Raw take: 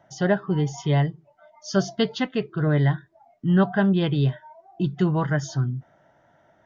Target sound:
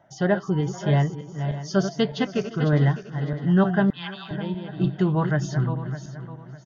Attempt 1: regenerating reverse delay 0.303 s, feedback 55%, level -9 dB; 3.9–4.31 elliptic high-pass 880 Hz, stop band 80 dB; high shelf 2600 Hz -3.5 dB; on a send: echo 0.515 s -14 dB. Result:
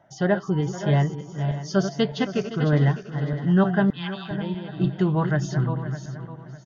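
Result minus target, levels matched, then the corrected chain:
echo-to-direct +6.5 dB
regenerating reverse delay 0.303 s, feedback 55%, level -9 dB; 3.9–4.31 elliptic high-pass 880 Hz, stop band 80 dB; high shelf 2600 Hz -3.5 dB; on a send: echo 0.515 s -20.5 dB

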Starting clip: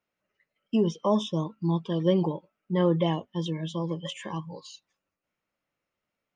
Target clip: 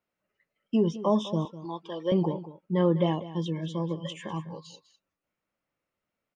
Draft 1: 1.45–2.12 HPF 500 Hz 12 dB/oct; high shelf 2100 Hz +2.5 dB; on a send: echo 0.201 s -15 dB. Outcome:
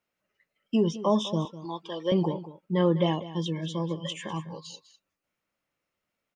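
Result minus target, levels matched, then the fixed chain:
4000 Hz band +4.5 dB
1.45–2.12 HPF 500 Hz 12 dB/oct; high shelf 2100 Hz -4.5 dB; on a send: echo 0.201 s -15 dB

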